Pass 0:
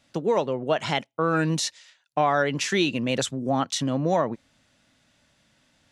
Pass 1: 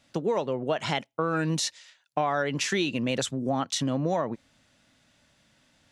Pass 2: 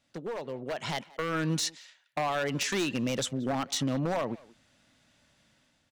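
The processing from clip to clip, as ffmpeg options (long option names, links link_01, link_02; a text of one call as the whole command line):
ffmpeg -i in.wav -af "acompressor=threshold=-24dB:ratio=2.5" out.wav
ffmpeg -i in.wav -filter_complex "[0:a]aeval=exprs='0.0891*(abs(mod(val(0)/0.0891+3,4)-2)-1)':channel_layout=same,dynaudnorm=framelen=550:gausssize=3:maxgain=7.5dB,asplit=2[link_01][link_02];[link_02]adelay=180,highpass=300,lowpass=3400,asoftclip=type=hard:threshold=-23.5dB,volume=-18dB[link_03];[link_01][link_03]amix=inputs=2:normalize=0,volume=-9dB" out.wav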